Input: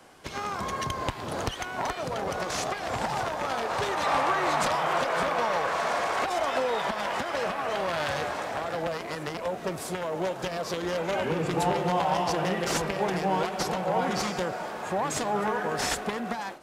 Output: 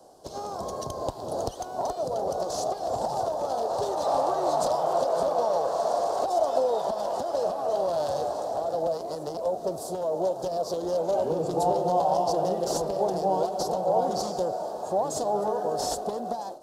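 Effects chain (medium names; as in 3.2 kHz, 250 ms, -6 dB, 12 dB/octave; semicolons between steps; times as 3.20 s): FFT filter 220 Hz 0 dB, 670 Hz +11 dB, 2.2 kHz -23 dB, 4.4 kHz +3 dB; trim -4.5 dB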